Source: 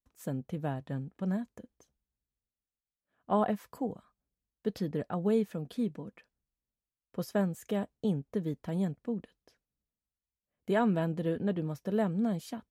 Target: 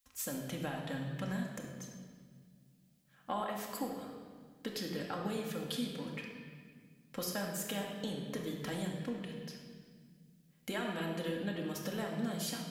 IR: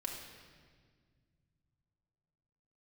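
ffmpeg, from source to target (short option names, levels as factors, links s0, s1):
-filter_complex "[0:a]tiltshelf=f=1100:g=-9.5,acompressor=threshold=0.00501:ratio=4[s0];[1:a]atrim=start_sample=2205[s1];[s0][s1]afir=irnorm=-1:irlink=0,volume=3.16"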